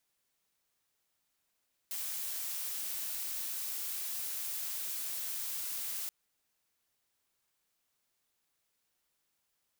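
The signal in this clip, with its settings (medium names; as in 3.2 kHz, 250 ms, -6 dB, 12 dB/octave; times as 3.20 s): noise blue, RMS -38 dBFS 4.18 s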